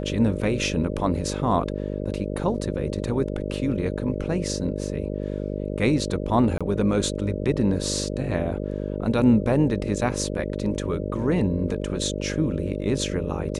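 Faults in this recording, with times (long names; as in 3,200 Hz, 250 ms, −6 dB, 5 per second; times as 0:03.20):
mains buzz 50 Hz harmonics 12 −29 dBFS
0:06.58–0:06.61: drop-out 26 ms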